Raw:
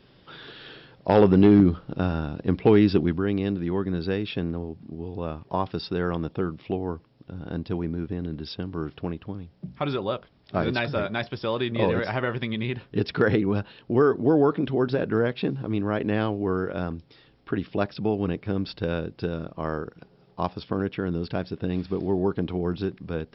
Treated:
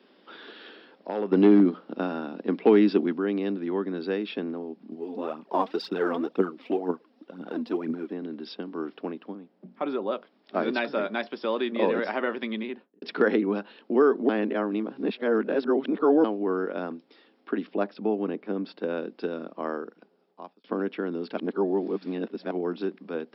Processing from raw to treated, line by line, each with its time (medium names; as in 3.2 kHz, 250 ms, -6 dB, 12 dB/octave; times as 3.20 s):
0.69–1.32 s: compression 1.5:1, threshold -45 dBFS
4.90–8.12 s: phaser 2 Hz, delay 4.6 ms, feedback 62%
9.33–10.11 s: treble shelf 2.8 kHz -> 2 kHz -10.5 dB
12.53–13.02 s: studio fade out
14.29–16.24 s: reverse
17.67–18.98 s: treble shelf 2.1 kHz -7 dB
19.61–20.64 s: fade out
21.37–22.51 s: reverse
whole clip: steep high-pass 210 Hz 48 dB/octave; treble shelf 3.7 kHz -8 dB